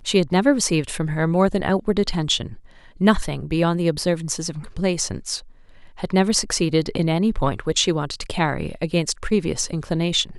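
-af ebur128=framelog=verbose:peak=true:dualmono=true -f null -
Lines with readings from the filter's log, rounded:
Integrated loudness:
  I:         -18.5 LUFS
  Threshold: -28.8 LUFS
Loudness range:
  LRA:         2.1 LU
  Threshold: -39.1 LUFS
  LRA low:   -20.1 LUFS
  LRA high:  -18.0 LUFS
True peak:
  Peak:       -4.0 dBFS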